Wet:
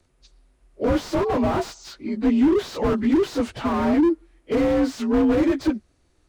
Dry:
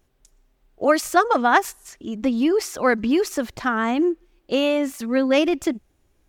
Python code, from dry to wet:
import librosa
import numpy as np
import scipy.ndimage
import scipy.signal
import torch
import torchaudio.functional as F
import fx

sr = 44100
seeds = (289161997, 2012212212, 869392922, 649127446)

y = fx.partial_stretch(x, sr, pct=87)
y = fx.dynamic_eq(y, sr, hz=6500.0, q=0.78, threshold_db=-46.0, ratio=4.0, max_db=4)
y = fx.slew_limit(y, sr, full_power_hz=36.0)
y = y * librosa.db_to_amplitude(4.5)